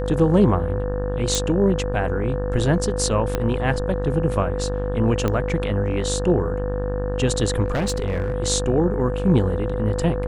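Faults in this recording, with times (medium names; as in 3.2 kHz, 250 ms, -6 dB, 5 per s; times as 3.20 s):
buzz 50 Hz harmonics 36 -26 dBFS
whine 500 Hz -27 dBFS
1.35 s: pop
3.35 s: pop -8 dBFS
5.28 s: pop -10 dBFS
7.64–8.34 s: clipped -18.5 dBFS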